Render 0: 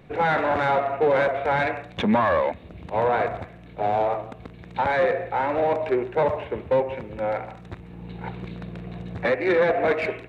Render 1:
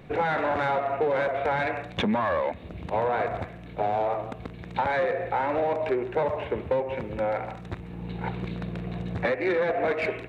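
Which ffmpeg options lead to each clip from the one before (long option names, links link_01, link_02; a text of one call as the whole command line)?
ffmpeg -i in.wav -af "acompressor=threshold=-26dB:ratio=4,volume=2.5dB" out.wav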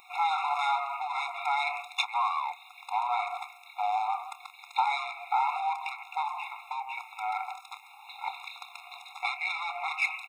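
ffmpeg -i in.wav -filter_complex "[0:a]crystalizer=i=3.5:c=0,asplit=2[link_01][link_02];[link_02]adelay=28,volume=-13.5dB[link_03];[link_01][link_03]amix=inputs=2:normalize=0,afftfilt=real='re*eq(mod(floor(b*sr/1024/700),2),1)':imag='im*eq(mod(floor(b*sr/1024/700),2),1)':win_size=1024:overlap=0.75" out.wav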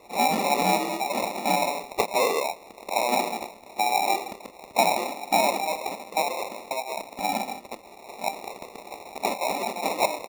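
ffmpeg -i in.wav -af "acrusher=samples=28:mix=1:aa=0.000001,volume=5.5dB" out.wav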